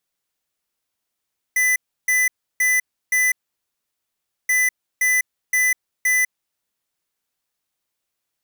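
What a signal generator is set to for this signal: beep pattern square 2 kHz, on 0.20 s, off 0.32 s, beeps 4, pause 1.17 s, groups 2, -17.5 dBFS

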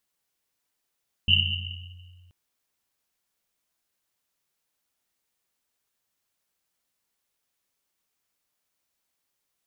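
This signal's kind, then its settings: Risset drum length 1.03 s, pitch 89 Hz, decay 2.23 s, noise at 2.9 kHz, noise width 270 Hz, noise 60%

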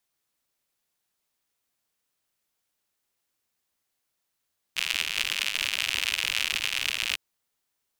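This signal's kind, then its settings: rain from filtered ticks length 2.40 s, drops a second 100, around 2.7 kHz, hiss -28 dB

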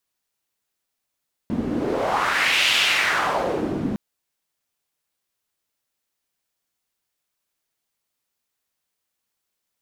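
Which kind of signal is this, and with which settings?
wind-like swept noise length 2.46 s, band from 230 Hz, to 2.9 kHz, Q 2.3, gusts 1, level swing 6.5 dB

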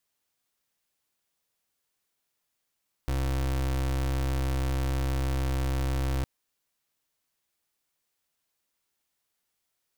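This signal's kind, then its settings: pulse 66.3 Hz, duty 32% -27.5 dBFS 3.16 s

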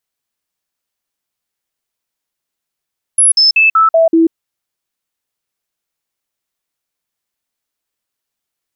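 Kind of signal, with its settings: stepped sine 10.5 kHz down, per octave 1, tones 6, 0.14 s, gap 0.05 s -5.5 dBFS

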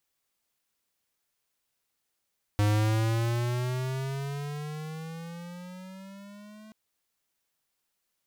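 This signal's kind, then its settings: gliding synth tone square, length 4.13 s, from 103 Hz, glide +13 st, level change -26 dB, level -23 dB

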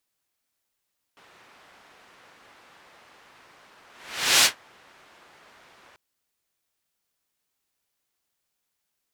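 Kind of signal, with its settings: whoosh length 4.79 s, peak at 3.27 s, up 0.58 s, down 0.13 s, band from 1.4 kHz, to 4.5 kHz, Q 0.71, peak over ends 38 dB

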